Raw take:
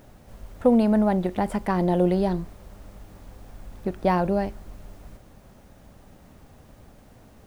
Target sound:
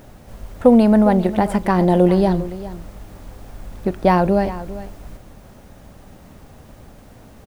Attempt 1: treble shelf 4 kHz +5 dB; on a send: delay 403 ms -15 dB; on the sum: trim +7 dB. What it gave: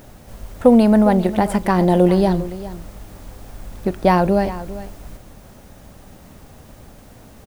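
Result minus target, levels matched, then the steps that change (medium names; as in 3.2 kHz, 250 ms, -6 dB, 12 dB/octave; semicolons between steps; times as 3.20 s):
8 kHz band +4.0 dB
remove: treble shelf 4 kHz +5 dB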